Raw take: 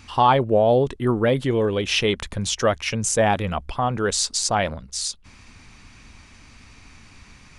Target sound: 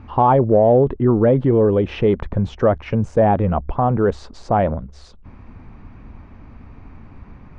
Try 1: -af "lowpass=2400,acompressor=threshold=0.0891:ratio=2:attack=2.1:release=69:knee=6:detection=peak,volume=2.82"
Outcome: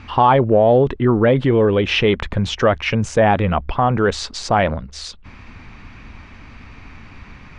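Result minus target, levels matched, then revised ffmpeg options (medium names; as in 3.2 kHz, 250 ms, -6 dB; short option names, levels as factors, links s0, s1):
2 kHz band +10.5 dB
-af "lowpass=860,acompressor=threshold=0.0891:ratio=2:attack=2.1:release=69:knee=6:detection=peak,volume=2.82"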